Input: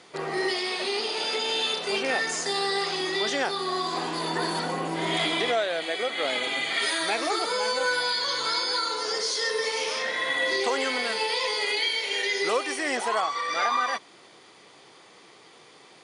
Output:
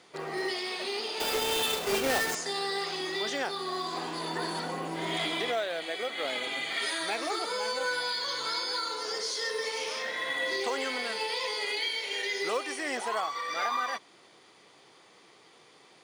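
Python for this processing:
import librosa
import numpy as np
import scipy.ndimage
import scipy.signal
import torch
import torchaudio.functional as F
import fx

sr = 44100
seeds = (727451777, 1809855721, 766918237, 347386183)

p1 = fx.halfwave_hold(x, sr, at=(1.2, 2.35))
p2 = fx.quant_float(p1, sr, bits=2)
p3 = p1 + (p2 * librosa.db_to_amplitude(-9.0))
y = p3 * librosa.db_to_amplitude(-8.0)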